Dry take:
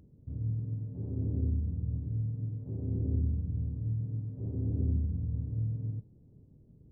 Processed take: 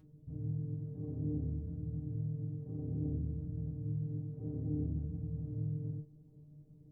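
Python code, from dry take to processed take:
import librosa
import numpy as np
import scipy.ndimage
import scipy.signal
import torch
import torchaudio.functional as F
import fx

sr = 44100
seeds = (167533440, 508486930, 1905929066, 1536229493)

y = fx.stiff_resonator(x, sr, f0_hz=150.0, decay_s=0.21, stiffness=0.002)
y = F.gain(torch.from_numpy(y), 9.0).numpy()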